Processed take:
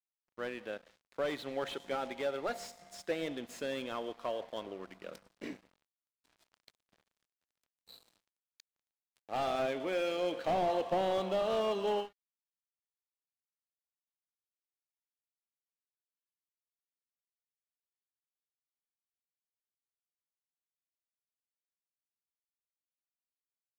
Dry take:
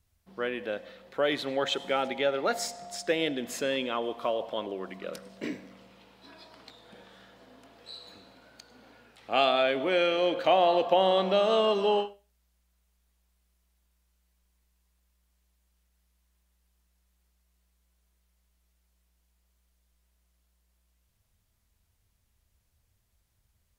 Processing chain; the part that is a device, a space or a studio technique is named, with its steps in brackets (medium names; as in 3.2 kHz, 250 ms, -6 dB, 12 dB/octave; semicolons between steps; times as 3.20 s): early transistor amplifier (crossover distortion -46.5 dBFS; slew-rate limiter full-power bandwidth 63 Hz); trim -6.5 dB